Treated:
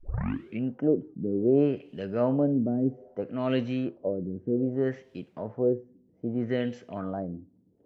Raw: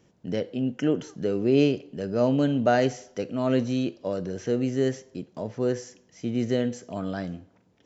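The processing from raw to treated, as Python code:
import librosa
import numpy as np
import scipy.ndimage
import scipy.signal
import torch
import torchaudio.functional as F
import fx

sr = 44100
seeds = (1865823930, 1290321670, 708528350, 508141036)

y = fx.tape_start_head(x, sr, length_s=0.64)
y = fx.dmg_noise_colour(y, sr, seeds[0], colour='violet', level_db=-58.0)
y = fx.filter_lfo_lowpass(y, sr, shape='sine', hz=0.63, low_hz=260.0, high_hz=3000.0, q=1.9)
y = F.gain(torch.from_numpy(y), -3.5).numpy()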